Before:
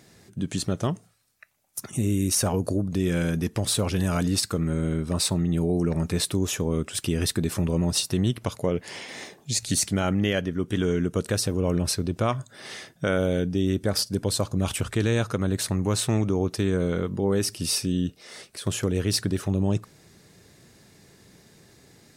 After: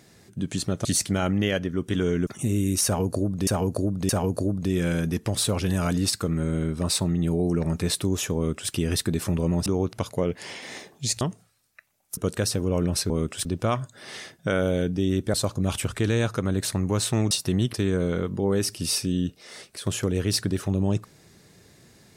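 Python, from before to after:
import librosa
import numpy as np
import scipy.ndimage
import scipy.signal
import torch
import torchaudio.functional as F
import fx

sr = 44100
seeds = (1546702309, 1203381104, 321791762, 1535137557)

y = fx.edit(x, sr, fx.swap(start_s=0.85, length_s=0.96, other_s=9.67, other_length_s=1.42),
    fx.repeat(start_s=2.39, length_s=0.62, count=3),
    fx.duplicate(start_s=6.66, length_s=0.35, to_s=12.02),
    fx.swap(start_s=7.96, length_s=0.43, other_s=16.27, other_length_s=0.27),
    fx.cut(start_s=13.91, length_s=0.39), tone=tone)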